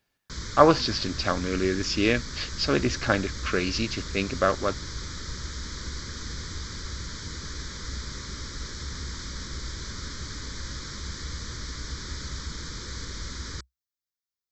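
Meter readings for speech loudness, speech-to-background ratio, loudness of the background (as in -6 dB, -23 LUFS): -25.5 LUFS, 10.5 dB, -36.0 LUFS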